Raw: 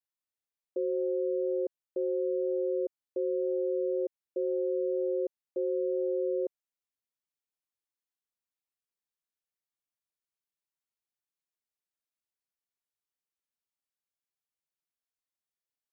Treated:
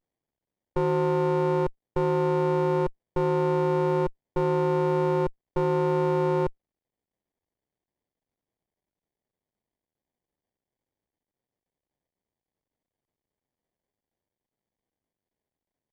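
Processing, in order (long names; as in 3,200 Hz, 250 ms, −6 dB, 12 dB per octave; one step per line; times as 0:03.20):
windowed peak hold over 33 samples
level +8.5 dB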